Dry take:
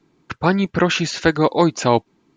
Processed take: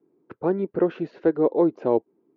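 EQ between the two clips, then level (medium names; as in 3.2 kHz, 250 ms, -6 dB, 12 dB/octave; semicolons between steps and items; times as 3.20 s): band-pass filter 410 Hz, Q 2.4; distance through air 190 m; +1.0 dB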